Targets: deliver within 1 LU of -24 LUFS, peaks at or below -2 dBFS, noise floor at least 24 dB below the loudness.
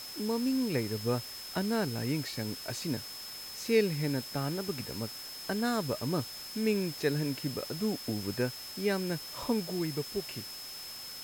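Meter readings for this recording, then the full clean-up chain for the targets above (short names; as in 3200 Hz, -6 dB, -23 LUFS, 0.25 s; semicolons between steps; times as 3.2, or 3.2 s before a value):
steady tone 5200 Hz; tone level -43 dBFS; noise floor -44 dBFS; noise floor target -58 dBFS; loudness -33.5 LUFS; peak -14.5 dBFS; loudness target -24.0 LUFS
-> notch 5200 Hz, Q 30; noise print and reduce 14 dB; gain +9.5 dB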